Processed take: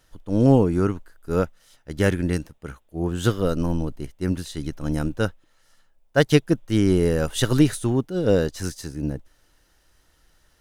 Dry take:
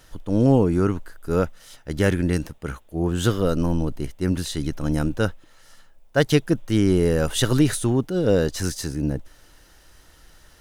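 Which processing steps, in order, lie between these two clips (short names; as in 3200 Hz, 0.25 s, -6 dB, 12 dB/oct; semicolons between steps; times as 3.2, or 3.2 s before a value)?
upward expander 1.5:1, over -36 dBFS; gain +2 dB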